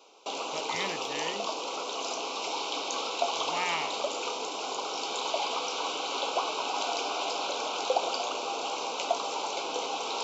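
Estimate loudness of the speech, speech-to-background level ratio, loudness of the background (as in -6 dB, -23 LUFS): -36.0 LUFS, -4.5 dB, -31.5 LUFS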